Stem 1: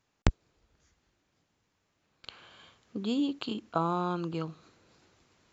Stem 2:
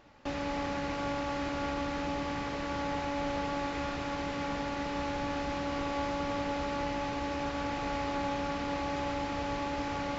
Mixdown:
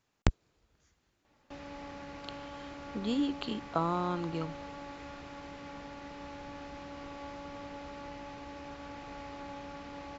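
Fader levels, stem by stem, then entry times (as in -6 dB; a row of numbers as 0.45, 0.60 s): -1.5, -11.0 dB; 0.00, 1.25 s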